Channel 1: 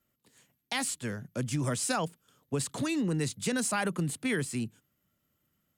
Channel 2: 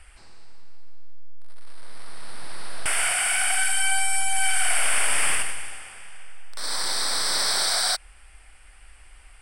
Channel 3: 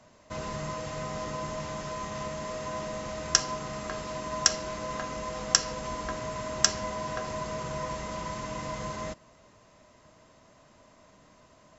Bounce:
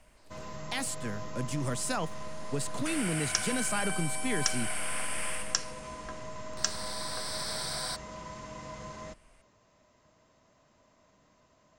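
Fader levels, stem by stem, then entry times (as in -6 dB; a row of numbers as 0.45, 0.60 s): -2.5, -13.0, -7.5 dB; 0.00, 0.00, 0.00 s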